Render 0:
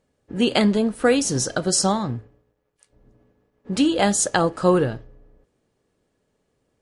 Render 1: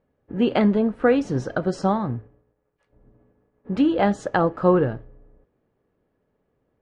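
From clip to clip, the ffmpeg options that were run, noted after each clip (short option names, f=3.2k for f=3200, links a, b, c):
-af "lowpass=1.8k"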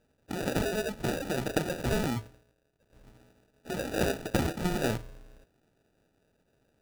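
-af "afftfilt=real='re*lt(hypot(re,im),0.447)':imag='im*lt(hypot(re,im),0.447)':win_size=1024:overlap=0.75,acrusher=samples=41:mix=1:aa=0.000001"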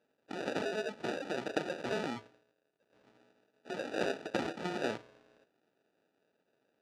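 -af "highpass=280,lowpass=4.6k,volume=-3.5dB"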